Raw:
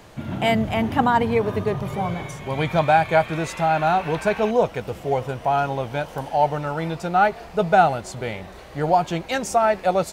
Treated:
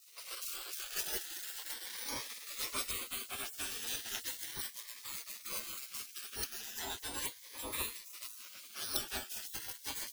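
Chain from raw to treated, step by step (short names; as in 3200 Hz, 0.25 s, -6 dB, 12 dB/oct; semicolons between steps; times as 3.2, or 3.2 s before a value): resonator 56 Hz, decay 0.19 s, harmonics odd, mix 100%; in parallel at +2.5 dB: compressor 6:1, threshold -35 dBFS, peak gain reduction 17 dB; on the sum: ten-band EQ 500 Hz -9 dB, 2000 Hz -10 dB, 8000 Hz -5 dB; on a send: tape echo 0.281 s, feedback 79%, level -22.5 dB, low-pass 2400 Hz; on the sum: decimation with a swept rate 8×, swing 100% 0.23 Hz; bell 7400 Hz -5 dB 0.27 oct; spectral gate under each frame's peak -30 dB weak; cascading phaser rising 0.37 Hz; gain +8.5 dB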